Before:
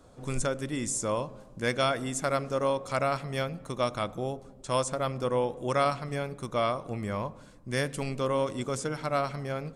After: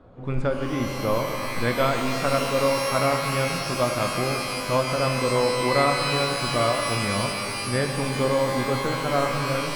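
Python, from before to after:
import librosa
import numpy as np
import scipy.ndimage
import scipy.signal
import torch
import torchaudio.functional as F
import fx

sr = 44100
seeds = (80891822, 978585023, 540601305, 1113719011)

y = fx.air_absorb(x, sr, metres=430.0)
y = fx.rev_shimmer(y, sr, seeds[0], rt60_s=3.2, semitones=12, shimmer_db=-2, drr_db=4.5)
y = F.gain(torch.from_numpy(y), 5.5).numpy()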